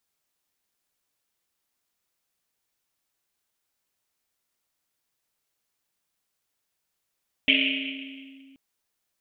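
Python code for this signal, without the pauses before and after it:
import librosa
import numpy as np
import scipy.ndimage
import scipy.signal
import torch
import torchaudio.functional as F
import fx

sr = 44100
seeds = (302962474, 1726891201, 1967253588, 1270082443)

y = fx.risset_drum(sr, seeds[0], length_s=1.08, hz=270.0, decay_s=2.74, noise_hz=2700.0, noise_width_hz=1000.0, noise_pct=65)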